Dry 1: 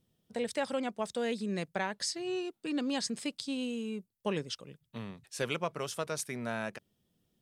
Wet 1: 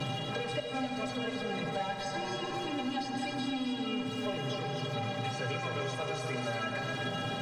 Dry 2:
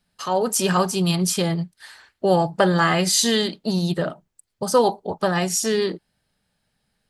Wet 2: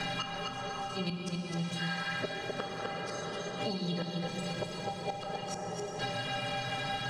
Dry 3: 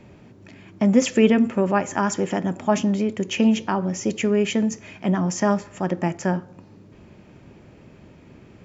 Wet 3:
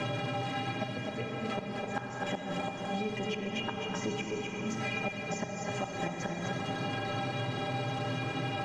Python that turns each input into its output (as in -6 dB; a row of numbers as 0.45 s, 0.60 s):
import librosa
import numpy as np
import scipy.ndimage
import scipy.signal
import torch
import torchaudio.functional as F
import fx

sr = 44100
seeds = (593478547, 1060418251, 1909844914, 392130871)

p1 = x + 0.5 * 10.0 ** (-27.0 / 20.0) * np.sign(x)
p2 = fx.highpass(p1, sr, hz=82.0, slope=6)
p3 = fx.high_shelf(p2, sr, hz=6600.0, db=-7.0)
p4 = fx.hum_notches(p3, sr, base_hz=60, count=7)
p5 = p4 + 0.77 * np.pad(p4, (int(6.3 * sr / 1000.0), 0))[:len(p4)]
p6 = fx.rider(p5, sr, range_db=5, speed_s=0.5)
p7 = p5 + (p6 * librosa.db_to_amplitude(1.0))
p8 = fx.stiff_resonator(p7, sr, f0_hz=120.0, decay_s=0.37, stiffness=0.03)
p9 = fx.gate_flip(p8, sr, shuts_db=-20.0, range_db=-25)
p10 = fx.air_absorb(p9, sr, metres=120.0)
p11 = p10 + fx.echo_single(p10, sr, ms=255, db=-7.0, dry=0)
p12 = fx.rev_plate(p11, sr, seeds[0], rt60_s=4.9, hf_ratio=0.5, predelay_ms=0, drr_db=1.5)
p13 = fx.band_squash(p12, sr, depth_pct=100)
y = p13 * librosa.db_to_amplitude(-1.5)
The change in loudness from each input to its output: +1.0 LU, -15.0 LU, -13.0 LU